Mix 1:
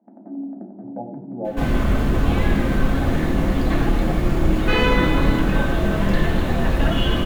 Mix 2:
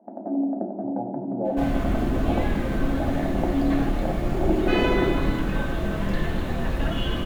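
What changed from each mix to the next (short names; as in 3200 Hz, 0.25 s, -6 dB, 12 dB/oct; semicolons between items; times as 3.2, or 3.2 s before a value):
first sound: add bell 610 Hz +14.5 dB 1.8 oct; second sound -6.5 dB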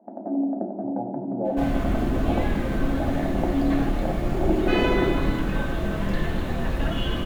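none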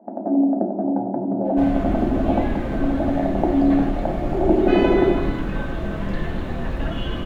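first sound +7.0 dB; master: add LPF 3500 Hz 6 dB/oct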